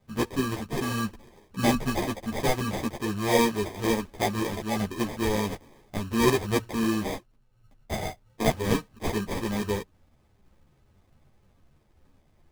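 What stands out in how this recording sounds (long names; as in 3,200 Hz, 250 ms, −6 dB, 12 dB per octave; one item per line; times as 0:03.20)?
aliases and images of a low sample rate 1,400 Hz, jitter 0%
a shimmering, thickened sound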